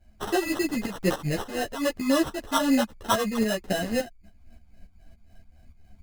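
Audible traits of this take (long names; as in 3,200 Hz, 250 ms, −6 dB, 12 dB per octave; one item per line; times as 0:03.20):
phaser sweep stages 4, 3.8 Hz, lowest notch 520–4,600 Hz
tremolo saw up 3.5 Hz, depth 70%
aliases and images of a low sample rate 2,300 Hz, jitter 0%
a shimmering, thickened sound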